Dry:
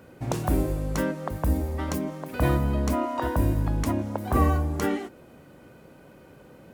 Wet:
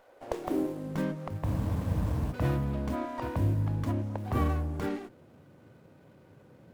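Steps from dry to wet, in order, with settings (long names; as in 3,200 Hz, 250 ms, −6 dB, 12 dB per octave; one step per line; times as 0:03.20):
high-pass filter sweep 710 Hz → 99 Hz, 0:00.03–0:01.35
frozen spectrum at 0:01.47, 0.85 s
windowed peak hold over 9 samples
level −7.5 dB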